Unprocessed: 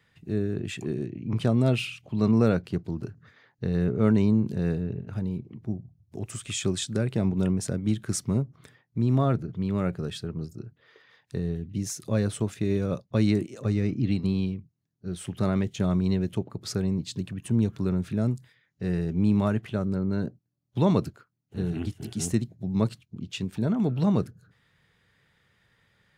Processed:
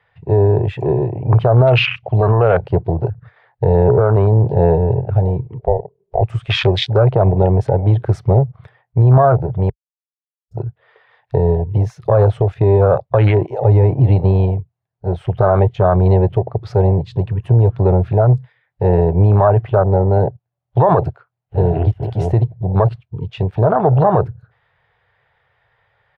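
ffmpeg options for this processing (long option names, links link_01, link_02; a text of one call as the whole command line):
ffmpeg -i in.wav -filter_complex "[0:a]asettb=1/sr,asplit=3[link_01][link_02][link_03];[link_01]atrim=end=5.594[link_04];[link_02]atrim=start=5.59:end=6.21,asetpts=PTS-STARTPTS,afade=type=in:duration=0.004:curve=qsin,afade=type=out:start_time=0.616:duration=0.004:curve=qsin,aeval=exprs='val(0)*sin(2*PI*290*n/s)':channel_layout=same[link_05];[link_03]atrim=start=6.206[link_06];[link_04][link_05]acrossfade=duration=0.004:curve1=hsin:curve2=qsin[link_07];[link_07][link_06]acrossfade=duration=0.004:curve1=qsin:curve2=hsin,asplit=3[link_08][link_09][link_10];[link_08]atrim=end=9.7,asetpts=PTS-STARTPTS,afade=type=out:start_time=9.696:duration=0.004:curve=hsin[link_11];[link_09]atrim=start=9.7:end=10.51,asetpts=PTS-STARTPTS,volume=0[link_12];[link_10]atrim=start=10.51,asetpts=PTS-STARTPTS,afade=type=in:duration=0.004:curve=hsin[link_13];[link_11][link_12][link_13]concat=n=3:v=0:a=1,afwtdn=0.0158,firequalizer=gain_entry='entry(120,0);entry(220,-22);entry(420,1);entry(730,12);entry(1200,4);entry(3200,-3);entry(7100,-23)':delay=0.05:min_phase=1,alimiter=level_in=22dB:limit=-1dB:release=50:level=0:latency=1,volume=-2.5dB" out.wav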